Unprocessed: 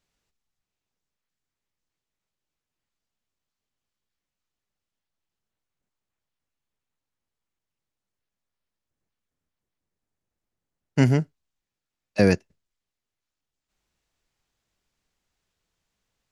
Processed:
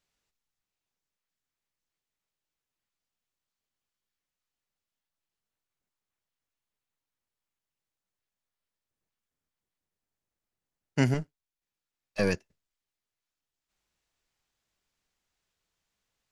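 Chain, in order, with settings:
0:11.14–0:12.35: gain on one half-wave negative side −7 dB
low-shelf EQ 490 Hz −5 dB
level −2 dB

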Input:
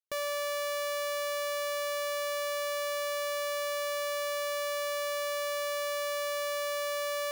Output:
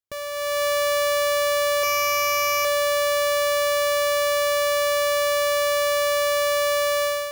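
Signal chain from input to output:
0:01.83–0:02.65: EQ curve with evenly spaced ripples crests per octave 0.8, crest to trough 15 dB
automatic gain control gain up to 11 dB
parametric band 82 Hz +12 dB 2.3 octaves

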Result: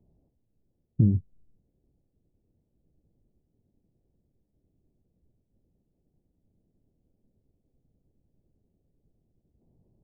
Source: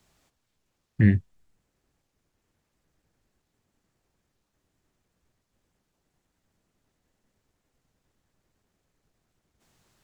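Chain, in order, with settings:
downward compressor 12 to 1, threshold −22 dBFS, peak gain reduction 10 dB
Gaussian smoothing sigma 17 samples
level +6 dB

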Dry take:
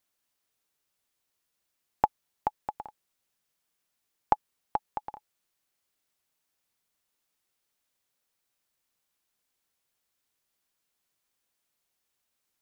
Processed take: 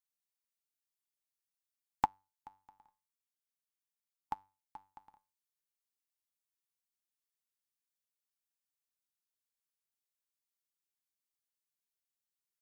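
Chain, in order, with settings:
high-shelf EQ 3,500 Hz +9.5 dB
mains-hum notches 50/100 Hz
tuned comb filter 97 Hz, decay 0.34 s, harmonics all, mix 60%
0:02.04–0:04.76: harmonic and percussive parts rebalanced percussive −5 dB
flat-topped bell 520 Hz −10.5 dB 1.1 octaves
expander for the loud parts 2.5 to 1, over −39 dBFS
level +2 dB

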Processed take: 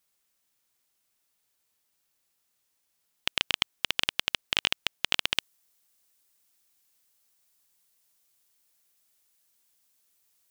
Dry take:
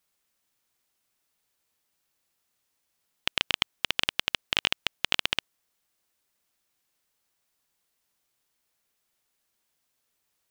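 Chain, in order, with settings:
high-shelf EQ 4,200 Hz +4.5 dB, from 0:05.35 +11 dB
level −2 dB

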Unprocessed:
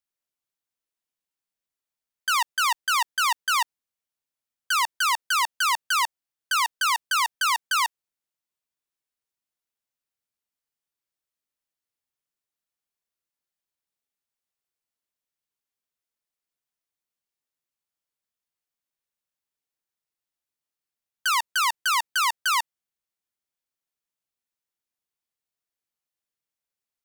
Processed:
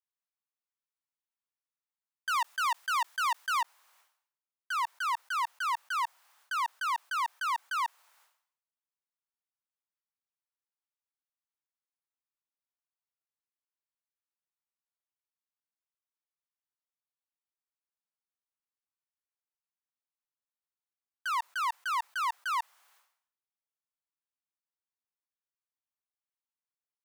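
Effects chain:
four-pole ladder high-pass 760 Hz, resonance 35%
high-shelf EQ 2,000 Hz −5.5 dB, from 0:03.61 −11 dB
level that may fall only so fast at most 96 dB per second

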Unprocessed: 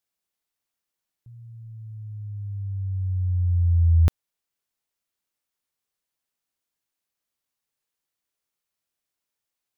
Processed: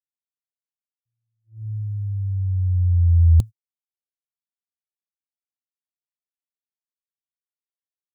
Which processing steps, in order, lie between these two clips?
dynamic equaliser 110 Hz, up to +8 dB, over −45 dBFS, Q 7.8
noise gate −31 dBFS, range −42 dB
bass and treble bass +9 dB, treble +12 dB
tempo change 1.2×
level −5.5 dB

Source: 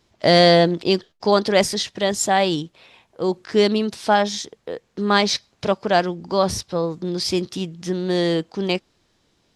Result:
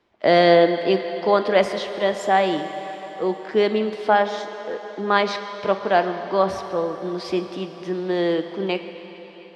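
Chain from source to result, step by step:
three-way crossover with the lows and the highs turned down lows −13 dB, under 240 Hz, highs −19 dB, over 3,100 Hz
convolution reverb RT60 4.9 s, pre-delay 7 ms, DRR 7.5 dB

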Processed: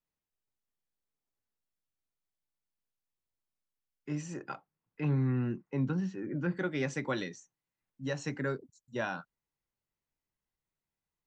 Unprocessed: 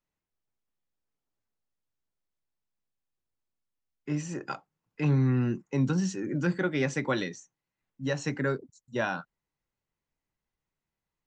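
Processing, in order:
0:04.42–0:06.56: low-pass filter 3,600 Hz → 2,300 Hz 12 dB per octave
level −5 dB

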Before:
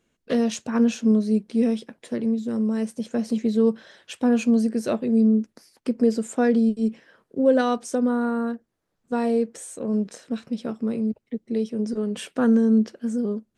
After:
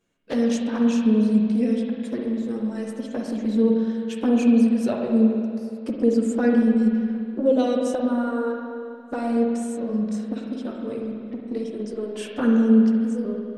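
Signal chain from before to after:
flanger swept by the level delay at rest 10.7 ms, full sweep at −15 dBFS
spring reverb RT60 2.3 s, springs 47/58 ms, chirp 25 ms, DRR 0 dB

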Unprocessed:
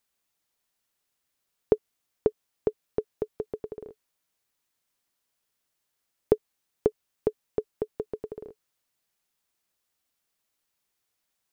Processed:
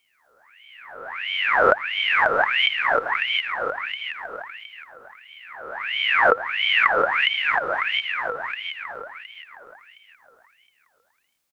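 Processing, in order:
peak hold with a rise ahead of every peak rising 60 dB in 1.79 s
repeating echo 716 ms, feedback 30%, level −5 dB
ring modulator whose carrier an LFO sweeps 1,800 Hz, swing 50%, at 1.5 Hz
level +3.5 dB

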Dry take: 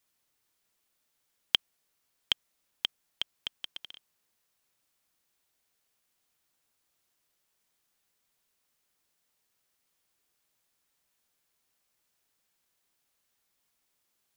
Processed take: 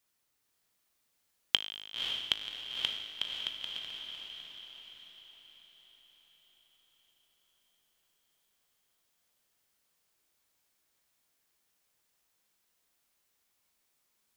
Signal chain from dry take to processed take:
tuned comb filter 52 Hz, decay 1.7 s, harmonics all, mix 70%
feedback delay with all-pass diffusion 537 ms, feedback 51%, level −3.5 dB
level +7.5 dB

